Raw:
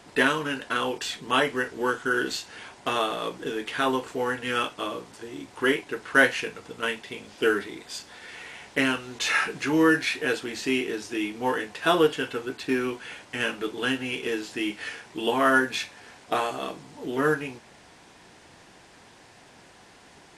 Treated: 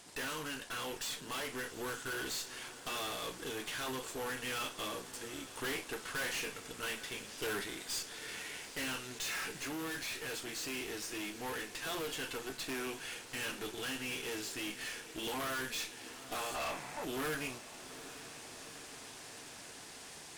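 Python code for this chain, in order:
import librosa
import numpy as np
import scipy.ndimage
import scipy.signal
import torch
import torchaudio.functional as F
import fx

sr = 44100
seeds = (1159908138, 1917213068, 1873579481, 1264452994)

p1 = F.preemphasis(torch.from_numpy(x), 0.8).numpy()
p2 = fx.spec_box(p1, sr, start_s=16.55, length_s=0.5, low_hz=530.0, high_hz=2700.0, gain_db=12)
p3 = fx.tube_stage(p2, sr, drive_db=45.0, bias=0.7)
p4 = fx.rider(p3, sr, range_db=5, speed_s=2.0)
p5 = p4 + fx.echo_diffused(p4, sr, ms=823, feedback_pct=70, wet_db=-15.0, dry=0)
y = p5 * librosa.db_to_amplitude(8.0)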